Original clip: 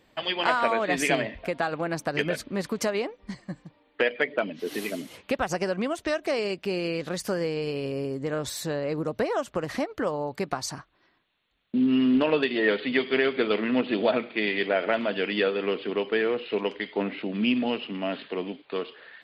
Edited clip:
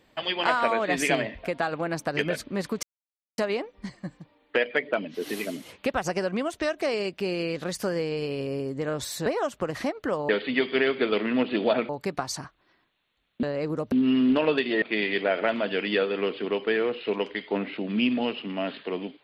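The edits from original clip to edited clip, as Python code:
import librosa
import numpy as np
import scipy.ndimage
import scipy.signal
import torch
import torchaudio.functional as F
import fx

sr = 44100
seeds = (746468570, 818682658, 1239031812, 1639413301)

y = fx.edit(x, sr, fx.insert_silence(at_s=2.83, length_s=0.55),
    fx.move(start_s=8.71, length_s=0.49, to_s=11.77),
    fx.move(start_s=12.67, length_s=1.6, to_s=10.23), tone=tone)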